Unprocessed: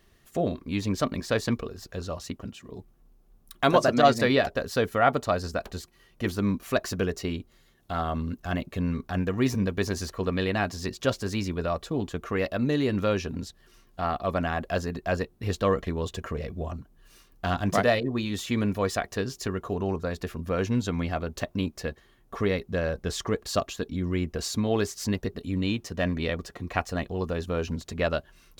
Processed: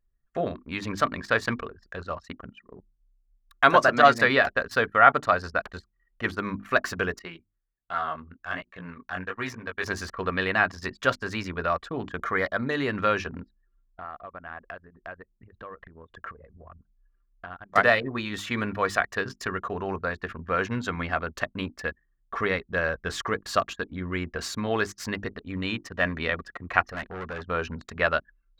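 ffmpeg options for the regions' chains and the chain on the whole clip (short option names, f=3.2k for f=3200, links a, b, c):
-filter_complex "[0:a]asettb=1/sr,asplit=3[a][b][c];[a]atrim=end=7.194[d];[b]atrim=start=7.19:end=9.84,asetpts=PTS-STARTPTS,afade=t=in:d=0.004:c=qsin,afade=t=out:st=2.646:d=0.004:c=qsin,lowshelf=f=430:g=-7.5,flanger=delay=16:depth=6.6:speed=1.3[e];[c]atrim=start=9.836[f];[d][e]acrossfade=d=0.004:c1=hsin:c2=qsin[g];[g][f]acrossfade=d=0.004:c1=qsin:c2=hsin,asettb=1/sr,asplit=3[h][i][j];[h]atrim=end=12.194[k];[i]atrim=start=12.19:end=12.71,asetpts=PTS-STARTPTS,afade=t=in:d=0.004:c=qsin,afade=t=out:st=0.516:d=0.004:c=qsin,asuperstop=centerf=2700:order=12:qfactor=6.6,acompressor=mode=upward:threshold=-32dB:ratio=2.5:attack=3.2:release=140:knee=2.83:detection=peak[l];[j]atrim=start=12.706[m];[k][l]acrossfade=d=0.004:c1=hsin:c2=qsin[n];[n][m]acrossfade=d=0.004:c1=qsin:c2=hsin,asettb=1/sr,asplit=3[o][p][q];[o]atrim=end=13.424[r];[p]atrim=start=13.42:end=17.76,asetpts=PTS-STARTPTS,afade=t=in:d=0.004:c=qsin,afade=t=out:st=4.336:d=0.004:c=qsin,equalizer=f=7.7k:w=0.4:g=-8,acompressor=threshold=-39dB:ratio=5:attack=3.2:release=140:knee=1:detection=peak[s];[q]atrim=start=17.756[t];[r][s]acrossfade=d=0.004:c1=hsin:c2=qsin[u];[u][t]acrossfade=d=0.004:c1=qsin:c2=hsin,asettb=1/sr,asplit=3[v][w][x];[v]atrim=end=26.844[y];[w]atrim=start=26.84:end=27.48,asetpts=PTS-STARTPTS,afade=t=in:d=0.004:c=qsin,afade=t=out:st=0.636:d=0.004:c=qsin,equalizer=f=7.9k:t=o:w=0.27:g=-9.5,asoftclip=type=hard:threshold=-31.5dB[z];[x]atrim=start=27.476[aa];[y][z]acrossfade=d=0.004:c1=hsin:c2=qsin[ab];[ab][aa]acrossfade=d=0.004:c1=qsin:c2=hsin,equalizer=f=1.5k:w=0.77:g=14.5,bandreject=f=50:t=h:w=6,bandreject=f=100:t=h:w=6,bandreject=f=150:t=h:w=6,bandreject=f=200:t=h:w=6,bandreject=f=250:t=h:w=6,bandreject=f=300:t=h:w=6,bandreject=f=350:t=h:w=6,anlmdn=6.31,volume=-4.5dB"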